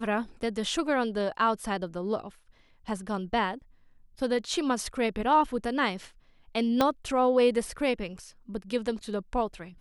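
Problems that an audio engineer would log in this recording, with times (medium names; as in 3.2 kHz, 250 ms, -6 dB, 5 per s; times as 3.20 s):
6.81 s: pop -10 dBFS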